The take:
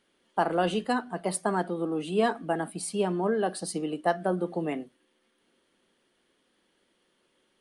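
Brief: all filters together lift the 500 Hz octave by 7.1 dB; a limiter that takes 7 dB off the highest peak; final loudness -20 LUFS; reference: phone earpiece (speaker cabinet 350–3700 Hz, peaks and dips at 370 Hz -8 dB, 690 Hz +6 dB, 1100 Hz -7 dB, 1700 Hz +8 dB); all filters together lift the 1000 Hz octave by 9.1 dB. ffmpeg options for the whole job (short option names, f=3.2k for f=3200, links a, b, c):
-af "equalizer=f=500:t=o:g=7,equalizer=f=1k:t=o:g=6,alimiter=limit=-13dB:level=0:latency=1,highpass=350,equalizer=f=370:t=q:w=4:g=-8,equalizer=f=690:t=q:w=4:g=6,equalizer=f=1.1k:t=q:w=4:g=-7,equalizer=f=1.7k:t=q:w=4:g=8,lowpass=f=3.7k:w=0.5412,lowpass=f=3.7k:w=1.3066,volume=6dB"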